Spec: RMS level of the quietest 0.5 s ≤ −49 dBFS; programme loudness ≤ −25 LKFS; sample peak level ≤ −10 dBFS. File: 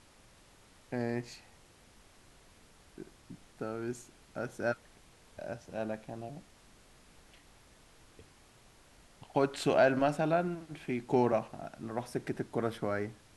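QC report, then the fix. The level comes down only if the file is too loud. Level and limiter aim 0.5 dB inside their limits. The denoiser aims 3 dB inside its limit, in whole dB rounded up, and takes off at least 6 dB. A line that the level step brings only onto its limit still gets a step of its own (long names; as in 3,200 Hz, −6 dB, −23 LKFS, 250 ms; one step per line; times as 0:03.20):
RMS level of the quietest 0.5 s −60 dBFS: in spec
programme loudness −34.0 LKFS: in spec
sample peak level −14.0 dBFS: in spec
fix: no processing needed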